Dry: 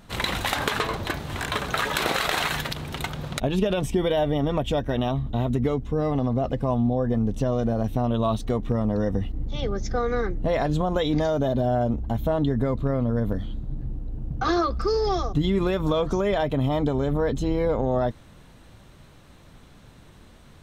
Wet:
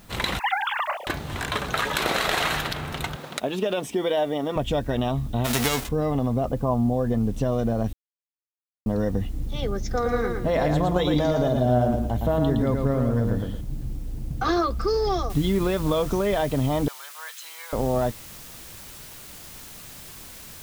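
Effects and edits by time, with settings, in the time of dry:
0.39–1.07 s: formants replaced by sine waves
2.01–2.58 s: reverb throw, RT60 2.4 s, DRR 5 dB
3.16–4.56 s: high-pass 280 Hz
5.44–5.87 s: formants flattened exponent 0.3
6.45–6.94 s: resonant high shelf 1.6 kHz -8.5 dB, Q 1.5
7.93–8.86 s: mute
9.86–13.61 s: bit-crushed delay 113 ms, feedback 35%, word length 9-bit, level -4 dB
15.30 s: noise floor step -57 dB -43 dB
16.88–17.73 s: high-pass 1.2 kHz 24 dB/octave

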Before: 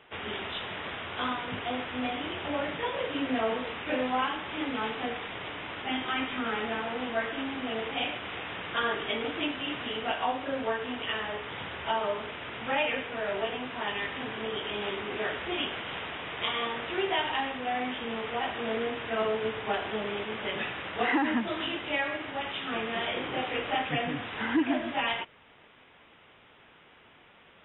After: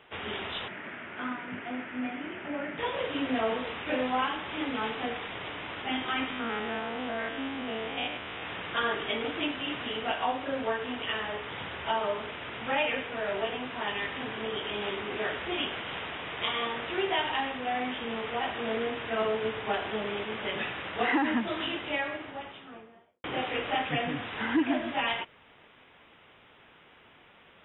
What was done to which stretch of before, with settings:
0.68–2.78 s: cabinet simulation 180–2300 Hz, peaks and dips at 230 Hz +3 dB, 480 Hz -9 dB, 780 Hz -7 dB, 1.1 kHz -8 dB
6.30–8.43 s: spectrogram pixelated in time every 100 ms
21.72–23.24 s: studio fade out

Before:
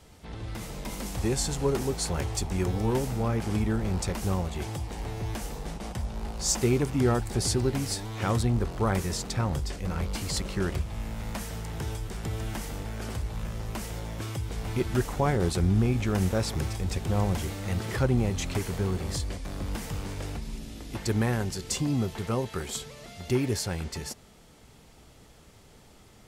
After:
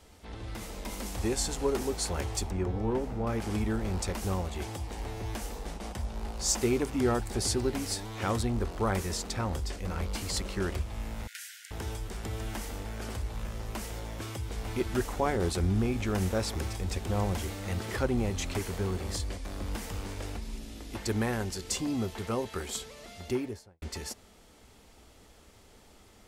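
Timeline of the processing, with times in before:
2.51–3.27 s: low-pass 1.2 kHz 6 dB/octave
11.27–11.71 s: Chebyshev high-pass 1.4 kHz, order 10
23.16–23.82 s: studio fade out
whole clip: peaking EQ 140 Hz -15 dB 0.39 oct; trim -1.5 dB

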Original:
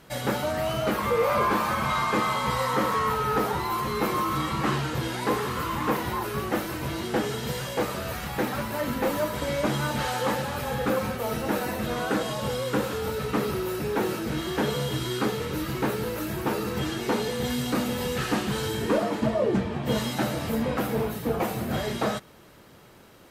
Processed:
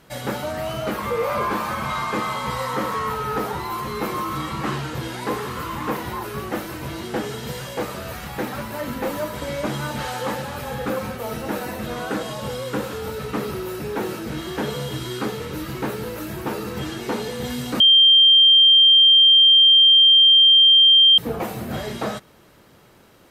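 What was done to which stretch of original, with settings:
17.80–21.18 s: bleep 3.17 kHz -9 dBFS

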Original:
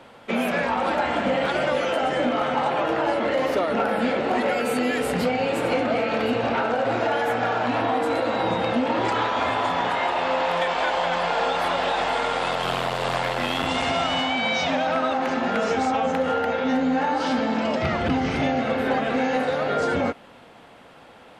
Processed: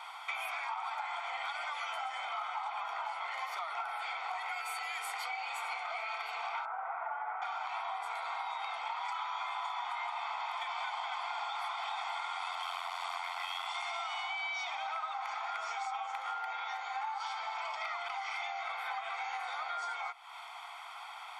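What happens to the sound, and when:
6.65–7.42 s: low-pass 1.7 kHz 24 dB/octave
whole clip: elliptic high-pass 690 Hz, stop band 60 dB; comb 0.9 ms, depth 86%; compression 6:1, threshold -39 dBFS; trim +2 dB

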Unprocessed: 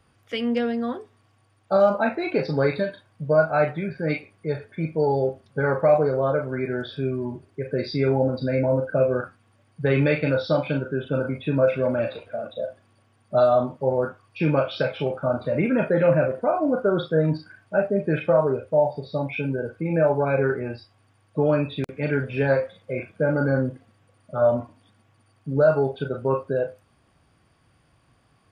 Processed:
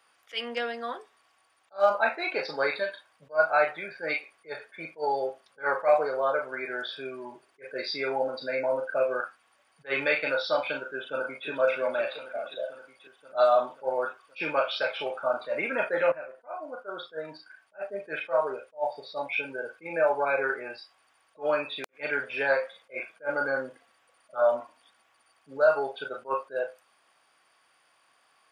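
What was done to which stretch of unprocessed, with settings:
10.88–11.48 s: echo throw 530 ms, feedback 65%, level -10 dB
16.12–19.16 s: fade in, from -15.5 dB
whole clip: high-pass 800 Hz 12 dB/octave; attacks held to a fixed rise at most 330 dB/s; trim +2.5 dB

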